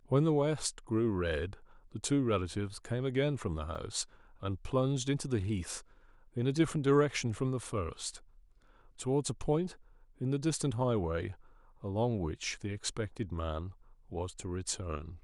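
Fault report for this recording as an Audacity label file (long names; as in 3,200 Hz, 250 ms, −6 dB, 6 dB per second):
3.750000	3.750000	drop-out 4.4 ms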